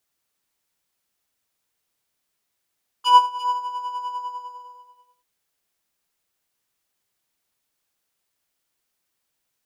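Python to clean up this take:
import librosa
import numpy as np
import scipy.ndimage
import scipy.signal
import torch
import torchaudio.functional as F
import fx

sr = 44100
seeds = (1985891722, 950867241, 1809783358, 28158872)

y = fx.fix_echo_inverse(x, sr, delay_ms=340, level_db=-12.5)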